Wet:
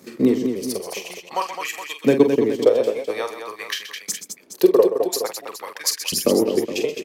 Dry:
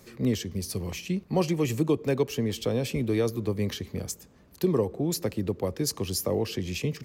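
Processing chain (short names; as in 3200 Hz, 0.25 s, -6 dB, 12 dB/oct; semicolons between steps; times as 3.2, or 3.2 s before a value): LFO high-pass saw up 0.49 Hz 220–2500 Hz; transient shaper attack +5 dB, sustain -12 dB; tapped delay 45/127/212/418 ms -8/-11.5/-7.5/-12.5 dB; gain +4 dB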